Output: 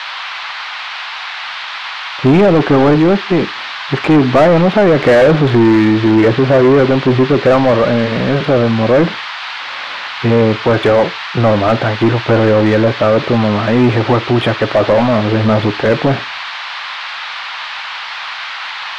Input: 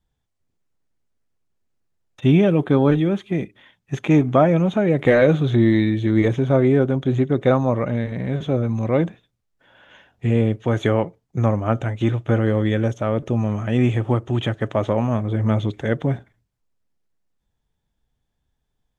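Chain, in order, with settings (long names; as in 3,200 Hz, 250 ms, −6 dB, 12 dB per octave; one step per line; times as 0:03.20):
adaptive Wiener filter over 9 samples
high-shelf EQ 4,700 Hz −8.5 dB
noise in a band 820–4,300 Hz −42 dBFS
mid-hump overdrive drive 27 dB, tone 1,600 Hz, clips at −2.5 dBFS
level +2 dB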